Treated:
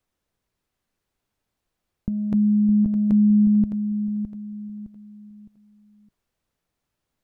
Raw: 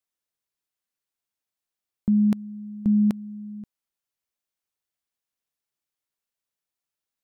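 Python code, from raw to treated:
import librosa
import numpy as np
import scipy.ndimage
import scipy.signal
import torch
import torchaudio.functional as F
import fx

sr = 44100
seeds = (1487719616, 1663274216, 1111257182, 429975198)

y = fx.tilt_eq(x, sr, slope=-3.0)
y = fx.over_compress(y, sr, threshold_db=-20.0, ratio=-0.5)
y = fx.echo_feedback(y, sr, ms=612, feedback_pct=34, wet_db=-9)
y = F.gain(torch.from_numpy(y), 4.5).numpy()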